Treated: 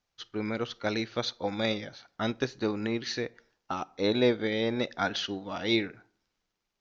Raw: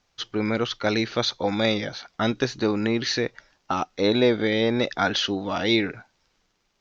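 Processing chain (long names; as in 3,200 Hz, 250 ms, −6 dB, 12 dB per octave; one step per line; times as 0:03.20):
convolution reverb RT60 0.60 s, pre-delay 22 ms, DRR 18.5 dB
expander for the loud parts 1.5 to 1, over −33 dBFS
level −4 dB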